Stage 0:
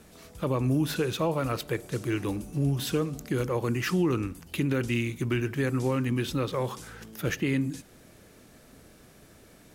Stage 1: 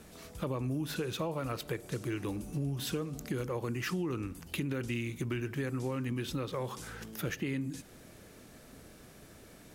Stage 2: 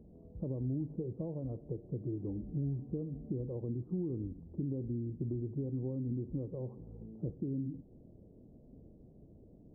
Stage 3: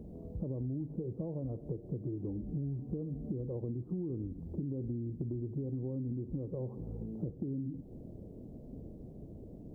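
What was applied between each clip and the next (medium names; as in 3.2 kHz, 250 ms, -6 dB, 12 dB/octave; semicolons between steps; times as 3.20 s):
compression 3:1, threshold -34 dBFS, peak gain reduction 10 dB
Gaussian low-pass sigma 17 samples
compression 4:1, threshold -45 dBFS, peak gain reduction 11.5 dB; trim +9 dB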